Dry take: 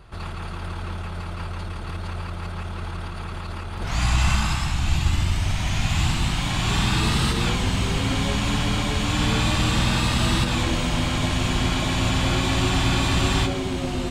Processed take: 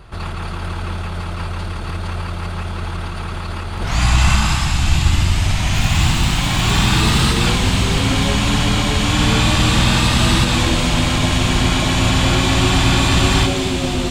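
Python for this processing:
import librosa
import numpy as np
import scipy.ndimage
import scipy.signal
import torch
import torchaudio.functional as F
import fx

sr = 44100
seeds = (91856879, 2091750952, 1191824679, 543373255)

y = fx.dmg_crackle(x, sr, seeds[0], per_s=440.0, level_db=-28.0, at=(5.72, 7.2), fade=0.02)
y = fx.echo_wet_highpass(y, sr, ms=246, feedback_pct=74, hz=2600.0, wet_db=-7.5)
y = y * librosa.db_to_amplitude(6.5)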